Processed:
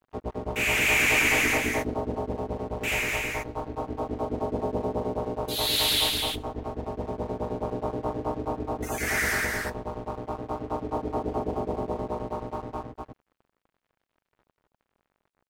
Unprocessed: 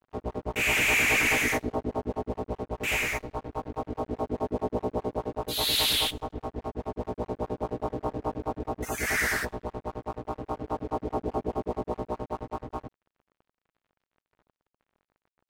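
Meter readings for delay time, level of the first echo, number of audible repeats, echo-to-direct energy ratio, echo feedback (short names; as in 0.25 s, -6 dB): 0.249 s, -3.5 dB, 1, -3.5 dB, no steady repeat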